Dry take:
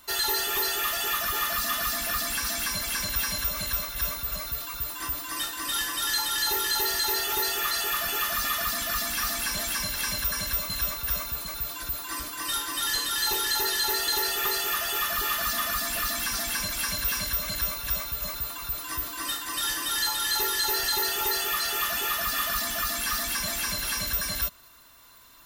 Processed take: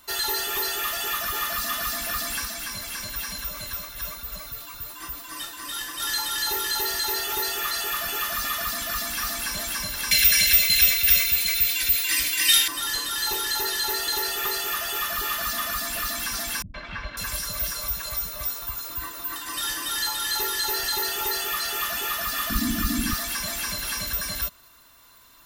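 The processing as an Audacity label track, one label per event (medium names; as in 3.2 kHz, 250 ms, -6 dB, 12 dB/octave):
2.450000	6.000000	flange 1.1 Hz, delay 3.8 ms, depth 7.3 ms, regen -27%
10.110000	12.680000	resonant high shelf 1.6 kHz +11 dB, Q 3
16.620000	19.360000	three bands offset in time lows, mids, highs 120/550 ms, splits 240/3100 Hz
22.500000	23.140000	resonant low shelf 390 Hz +13 dB, Q 3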